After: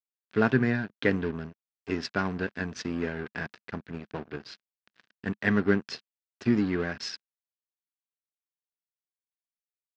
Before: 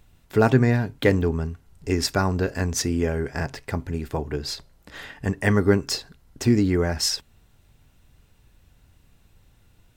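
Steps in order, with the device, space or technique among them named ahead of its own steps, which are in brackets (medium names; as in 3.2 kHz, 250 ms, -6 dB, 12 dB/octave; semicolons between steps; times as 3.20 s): blown loudspeaker (crossover distortion -32 dBFS; cabinet simulation 130–4800 Hz, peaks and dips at 210 Hz +5 dB, 560 Hz -3 dB, 840 Hz -4 dB, 1.6 kHz +7 dB, 2.6 kHz +3 dB); trim -5 dB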